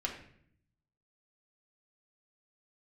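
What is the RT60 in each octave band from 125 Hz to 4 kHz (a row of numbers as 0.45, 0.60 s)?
1.2, 0.95, 0.70, 0.55, 0.65, 0.50 s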